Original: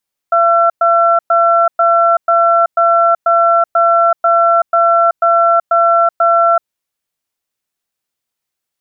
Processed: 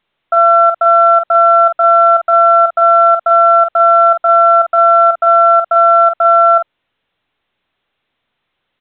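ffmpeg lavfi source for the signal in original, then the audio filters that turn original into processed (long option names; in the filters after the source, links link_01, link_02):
-f lavfi -i "aevalsrc='0.316*(sin(2*PI*679*t)+sin(2*PI*1350*t))*clip(min(mod(t,0.49),0.38-mod(t,0.49))/0.005,0,1)':duration=6.29:sample_rate=44100"
-filter_complex "[0:a]asplit=2[link_01][link_02];[link_02]adelay=46,volume=-6dB[link_03];[link_01][link_03]amix=inputs=2:normalize=0" -ar 8000 -c:a pcm_alaw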